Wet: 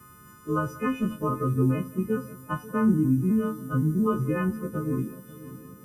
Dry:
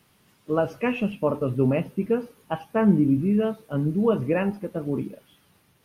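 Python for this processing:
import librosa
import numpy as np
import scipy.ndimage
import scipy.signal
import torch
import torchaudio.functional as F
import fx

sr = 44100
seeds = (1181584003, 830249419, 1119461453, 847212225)

y = fx.freq_snap(x, sr, grid_st=3)
y = fx.curve_eq(y, sr, hz=(110.0, 180.0, 320.0, 490.0, 730.0, 1200.0, 2000.0, 4200.0, 6500.0), db=(0, -4, -6, -11, -25, 1, -18, -21, -8))
y = fx.echo_heads(y, sr, ms=179, heads='first and third', feedback_pct=49, wet_db=-21.5)
y = fx.band_squash(y, sr, depth_pct=40)
y = F.gain(torch.from_numpy(y), 4.5).numpy()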